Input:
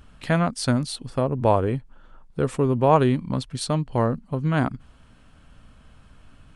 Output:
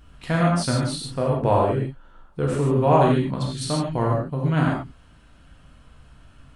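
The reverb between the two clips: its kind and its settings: non-linear reverb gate 0.17 s flat, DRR -3 dB; gain -3.5 dB

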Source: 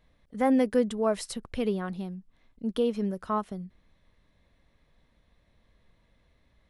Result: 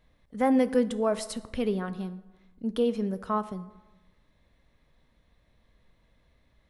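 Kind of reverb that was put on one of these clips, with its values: plate-style reverb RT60 1.1 s, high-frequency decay 0.55×, DRR 12.5 dB

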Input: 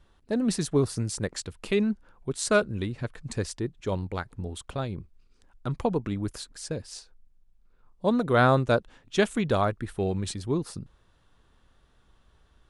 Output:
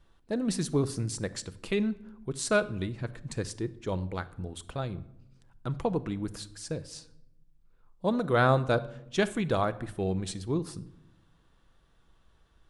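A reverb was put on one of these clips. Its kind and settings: shoebox room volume 2500 m³, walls furnished, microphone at 0.69 m; gain -3 dB

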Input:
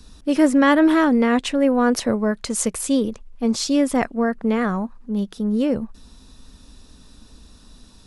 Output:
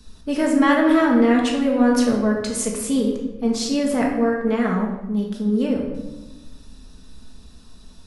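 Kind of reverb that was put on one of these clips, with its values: shoebox room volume 480 m³, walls mixed, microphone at 1.5 m; gain -4 dB

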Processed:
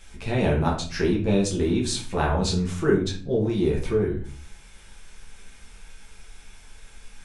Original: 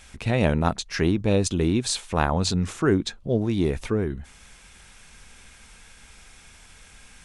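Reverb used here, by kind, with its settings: shoebox room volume 35 m³, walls mixed, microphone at 0.82 m; gain -6 dB

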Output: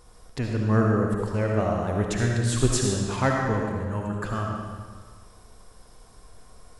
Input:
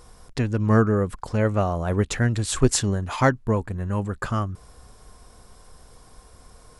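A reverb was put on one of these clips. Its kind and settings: digital reverb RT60 1.6 s, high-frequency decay 0.9×, pre-delay 30 ms, DRR -0.5 dB; gain -5 dB

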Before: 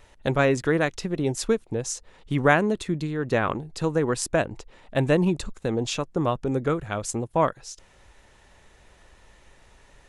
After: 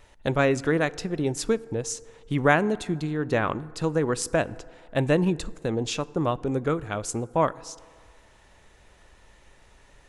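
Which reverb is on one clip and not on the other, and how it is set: FDN reverb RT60 2 s, low-frequency decay 0.75×, high-frequency decay 0.4×, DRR 19 dB; gain -1 dB

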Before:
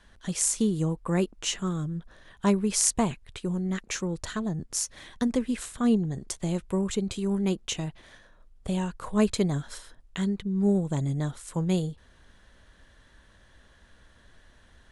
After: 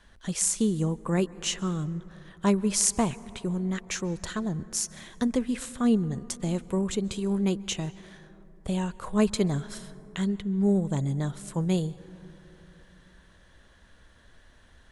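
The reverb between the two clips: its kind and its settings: plate-style reverb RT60 3.7 s, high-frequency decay 0.25×, pre-delay 0.12 s, DRR 18.5 dB

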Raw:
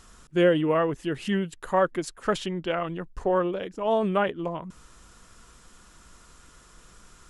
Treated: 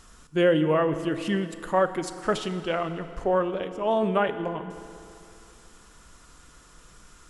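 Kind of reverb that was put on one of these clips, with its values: FDN reverb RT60 2.7 s, high-frequency decay 0.8×, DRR 9.5 dB

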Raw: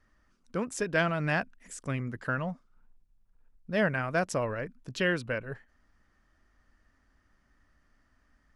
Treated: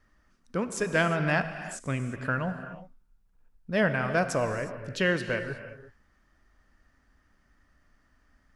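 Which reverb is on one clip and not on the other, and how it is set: non-linear reverb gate 0.39 s flat, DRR 8.5 dB; gain +2 dB

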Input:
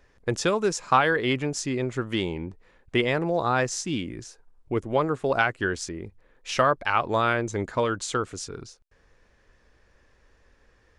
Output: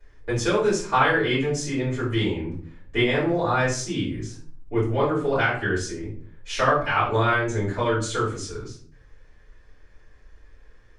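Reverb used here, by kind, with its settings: shoebox room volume 45 m³, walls mixed, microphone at 3.3 m; gain -13 dB

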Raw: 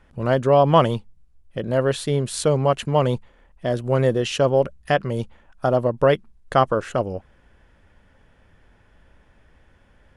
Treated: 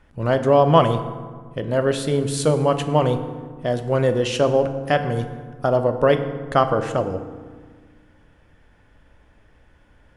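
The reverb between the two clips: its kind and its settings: FDN reverb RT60 1.6 s, low-frequency decay 1.45×, high-frequency decay 0.55×, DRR 7.5 dB

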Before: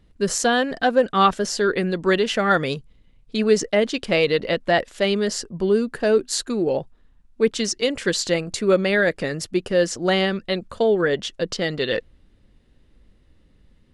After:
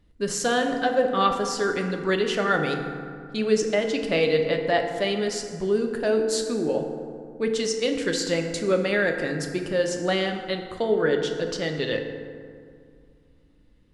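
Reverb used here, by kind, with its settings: FDN reverb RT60 2.2 s, low-frequency decay 1.2×, high-frequency decay 0.45×, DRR 3.5 dB; gain -5 dB

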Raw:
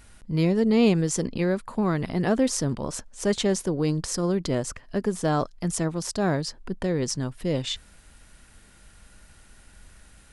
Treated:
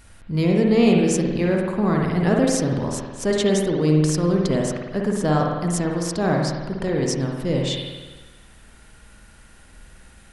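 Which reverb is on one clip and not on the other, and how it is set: spring tank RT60 1.3 s, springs 52 ms, chirp 45 ms, DRR -0.5 dB; gain +1.5 dB

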